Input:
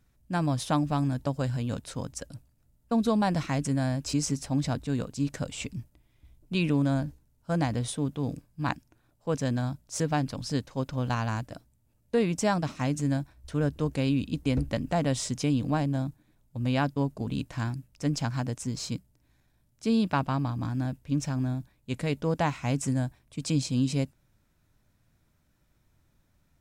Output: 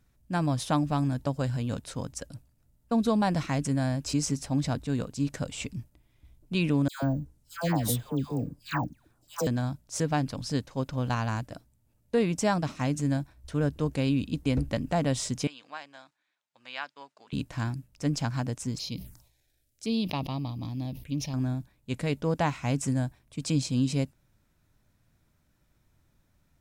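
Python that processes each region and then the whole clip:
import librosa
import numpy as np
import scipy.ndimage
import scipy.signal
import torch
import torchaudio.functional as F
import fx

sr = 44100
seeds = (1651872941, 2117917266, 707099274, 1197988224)

y = fx.chain(x, sr, fx.high_shelf(hz=7100.0, db=10.0),
    fx.dispersion(late='lows', ms=148.0, hz=1300.0),
    fx.resample_bad(factor=2, down='filtered', up='hold'), at=(6.88, 9.47))
y = fx.chain(y, sr, fx.highpass(hz=1400.0, slope=12),
    fx.air_absorb(metres=110.0), at=(15.47, 17.33))
y = fx.chain(y, sr, fx.tilt_shelf(db=-4.0, hz=1400.0),
    fx.env_phaser(low_hz=160.0, high_hz=1500.0, full_db=-34.5),
    fx.sustainer(db_per_s=95.0), at=(18.76, 21.34))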